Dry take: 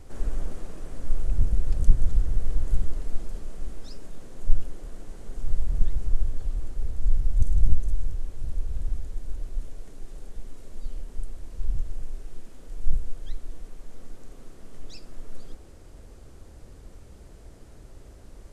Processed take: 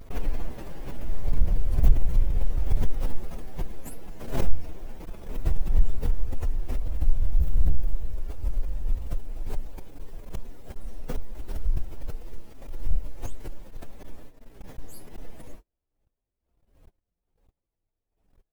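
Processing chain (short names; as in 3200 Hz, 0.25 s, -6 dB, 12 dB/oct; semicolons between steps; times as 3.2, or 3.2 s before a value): inharmonic rescaling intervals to 126%; vibrato 2.8 Hz 64 cents; in parallel at -7.5 dB: hard clip -15.5 dBFS, distortion -14 dB; on the sum: gate -38 dBFS, range -40 dB; backwards sustainer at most 90 dB/s; gain +2 dB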